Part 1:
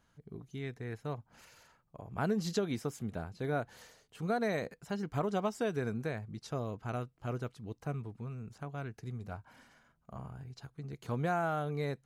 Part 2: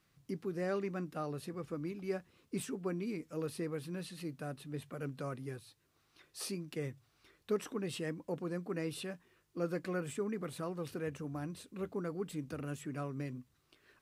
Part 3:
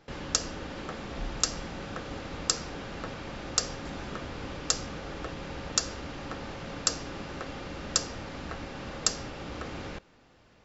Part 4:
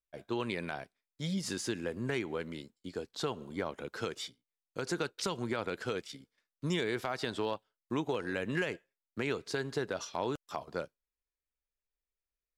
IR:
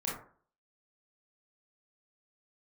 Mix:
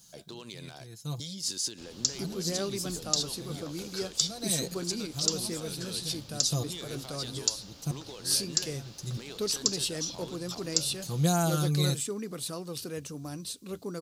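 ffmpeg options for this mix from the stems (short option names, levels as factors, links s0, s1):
-filter_complex "[0:a]highpass=f=180:p=1,bass=f=250:g=14,treble=f=4000:g=12,aecho=1:1:5.9:0.69,volume=0.944[s0];[1:a]asoftclip=type=hard:threshold=0.0447,adelay=1900,volume=1.19[s1];[2:a]adelay=1700,volume=0.168[s2];[3:a]acompressor=threshold=0.00891:ratio=16,alimiter=level_in=3.76:limit=0.0631:level=0:latency=1:release=36,volume=0.266,asoftclip=type=hard:threshold=0.0141,volume=1.19,asplit=2[s3][s4];[s4]apad=whole_len=531936[s5];[s0][s5]sidechaincompress=threshold=0.00112:ratio=12:attack=41:release=413[s6];[s6][s1][s2][s3]amix=inputs=4:normalize=0,highshelf=f=3000:t=q:w=1.5:g=13"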